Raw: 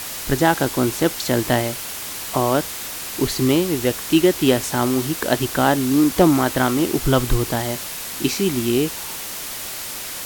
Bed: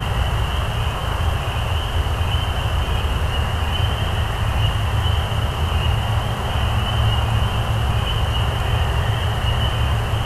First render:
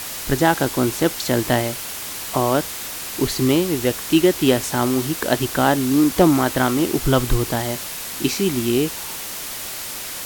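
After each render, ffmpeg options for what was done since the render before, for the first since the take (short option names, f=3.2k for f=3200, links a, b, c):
-af anull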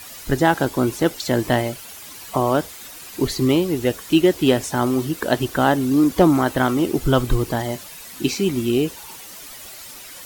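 -af "afftdn=nr=11:nf=-31"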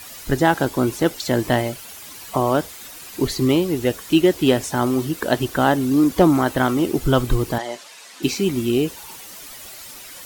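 -filter_complex "[0:a]asettb=1/sr,asplit=3[a][b][c];[a]atrim=end=7.584[d];[b]atrim=start=7.58:end=8.23,asetpts=PTS-STARTPTS,afade=t=in:d=0.004:c=qsin,afade=t=out:st=0.646:d=0.004:c=qsin,highpass=430,lowpass=7.2k[e];[c]atrim=start=8.226[f];[d][e]acrossfade=d=0.004:c1=hsin:c2=qsin[g];[g][f]acrossfade=d=0.004:c1=qsin:c2=hsin"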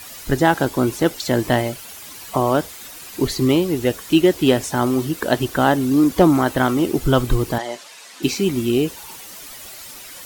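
-af "volume=1dB"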